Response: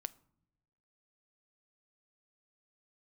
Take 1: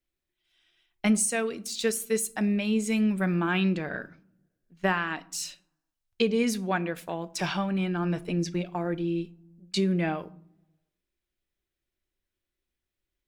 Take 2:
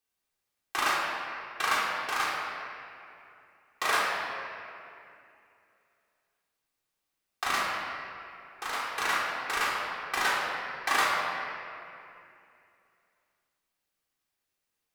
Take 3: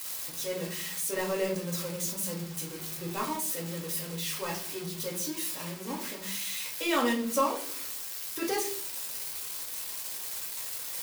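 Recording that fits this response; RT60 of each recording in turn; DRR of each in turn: 1; no single decay rate, 2.6 s, 0.50 s; 13.5 dB, -7.0 dB, -3.0 dB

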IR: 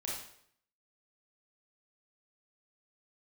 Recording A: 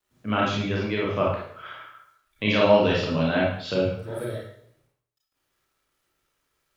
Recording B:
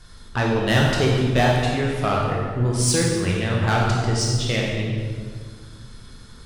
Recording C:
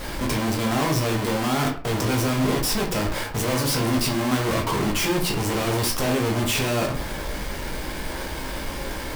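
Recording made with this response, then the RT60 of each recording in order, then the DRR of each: A; 0.65 s, 1.8 s, 0.45 s; -5.0 dB, -3.0 dB, 0.0 dB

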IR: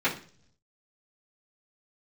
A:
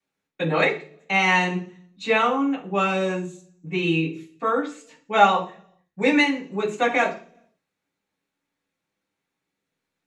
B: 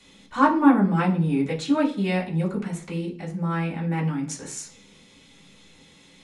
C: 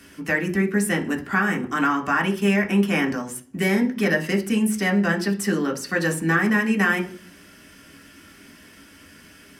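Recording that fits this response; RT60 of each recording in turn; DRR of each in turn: A; 0.45 s, 0.45 s, 0.45 s; -13.0 dB, -9.0 dB, 0.0 dB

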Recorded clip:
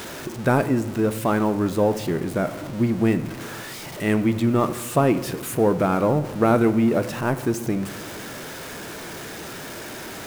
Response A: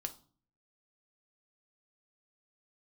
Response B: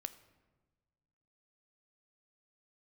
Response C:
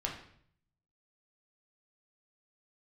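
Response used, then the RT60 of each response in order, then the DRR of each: B; 0.45 s, 1.3 s, 0.60 s; 6.5 dB, 11.5 dB, -1.5 dB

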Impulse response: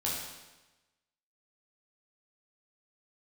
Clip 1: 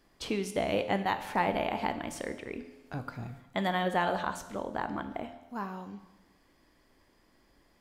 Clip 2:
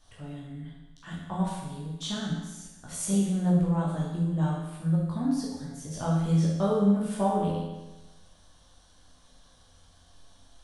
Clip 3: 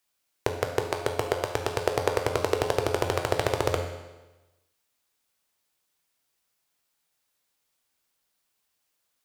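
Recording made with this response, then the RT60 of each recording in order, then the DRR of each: 2; 1.1 s, 1.1 s, 1.1 s; 8.5 dB, -6.0 dB, 3.5 dB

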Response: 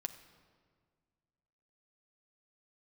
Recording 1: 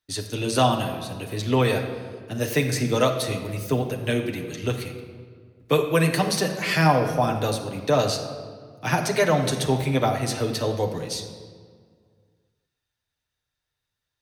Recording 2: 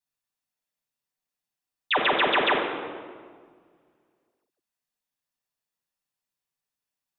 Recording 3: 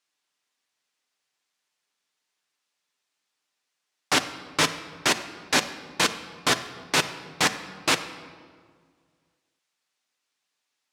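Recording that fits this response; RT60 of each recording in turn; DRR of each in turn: 3; 1.8 s, 1.8 s, 1.8 s; 1.0 dB, -6.5 dB, 7.0 dB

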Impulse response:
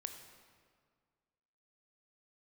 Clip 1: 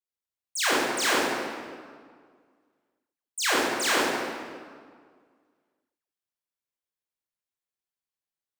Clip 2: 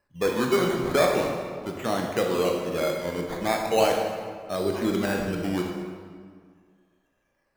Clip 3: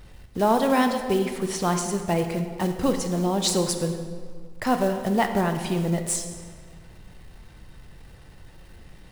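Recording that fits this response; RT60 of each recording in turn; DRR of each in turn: 3; 1.9 s, 1.9 s, 1.9 s; -8.0 dB, 1.0 dB, 6.0 dB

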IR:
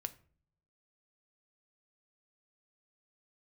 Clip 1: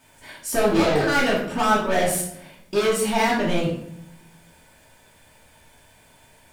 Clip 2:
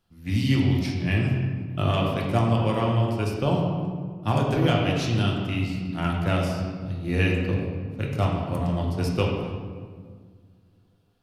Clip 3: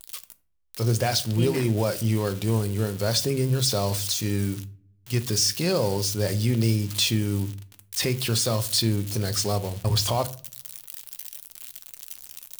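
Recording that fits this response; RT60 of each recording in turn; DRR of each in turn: 3; 0.70 s, 1.8 s, 0.50 s; -6.0 dB, -2.0 dB, 9.5 dB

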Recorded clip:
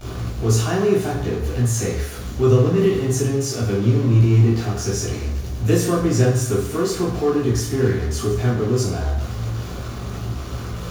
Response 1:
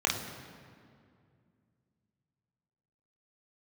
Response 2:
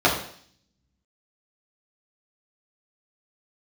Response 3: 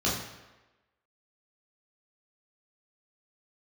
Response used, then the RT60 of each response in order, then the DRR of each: 3; 2.3 s, 0.55 s, 1.1 s; -2.0 dB, -6.0 dB, -7.0 dB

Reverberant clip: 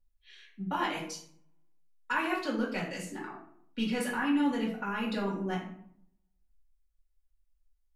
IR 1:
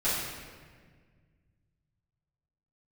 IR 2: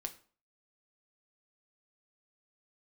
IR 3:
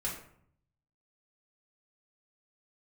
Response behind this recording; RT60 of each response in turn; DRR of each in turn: 3; 1.7 s, 0.45 s, 0.65 s; -13.0 dB, 5.0 dB, -5.0 dB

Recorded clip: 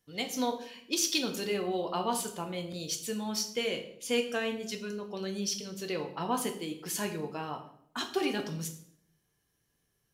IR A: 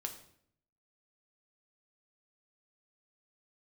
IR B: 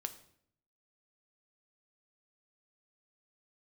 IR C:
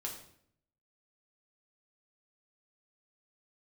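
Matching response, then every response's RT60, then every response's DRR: A; 0.65 s, 0.65 s, 0.65 s; 3.5 dB, 7.5 dB, -2.0 dB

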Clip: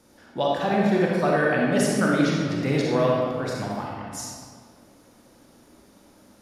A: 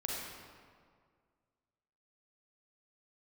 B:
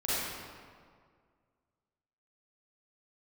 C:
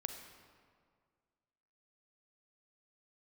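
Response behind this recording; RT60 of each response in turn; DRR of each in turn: A; 1.9 s, 1.9 s, 1.9 s; -3.5 dB, -11.0 dB, 5.5 dB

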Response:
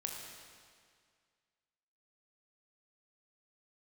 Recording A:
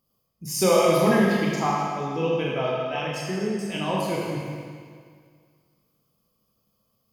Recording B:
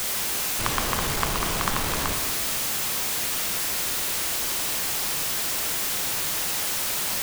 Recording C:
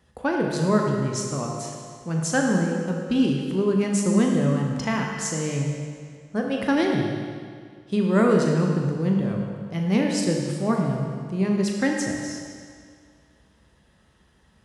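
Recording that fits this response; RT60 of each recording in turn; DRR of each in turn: C; 2.0 s, 2.0 s, 2.0 s; -5.0 dB, 4.5 dB, 0.0 dB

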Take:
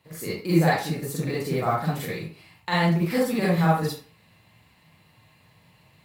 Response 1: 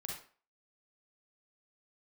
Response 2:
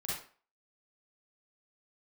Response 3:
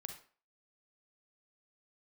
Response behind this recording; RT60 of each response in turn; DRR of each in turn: 2; 0.40 s, 0.40 s, 0.40 s; -2.0 dB, -7.5 dB, 4.5 dB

